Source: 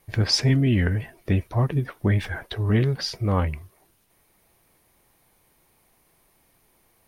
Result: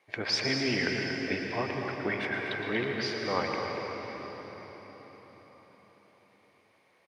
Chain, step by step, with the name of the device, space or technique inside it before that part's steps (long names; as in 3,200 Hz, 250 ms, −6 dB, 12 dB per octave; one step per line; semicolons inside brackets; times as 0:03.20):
station announcement (band-pass filter 380–4,300 Hz; parametric band 2,200 Hz +6.5 dB 0.3 octaves; loudspeakers that aren't time-aligned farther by 39 metres −11 dB, 80 metres −10 dB; convolution reverb RT60 5.0 s, pre-delay 113 ms, DRR 1.5 dB)
level −3 dB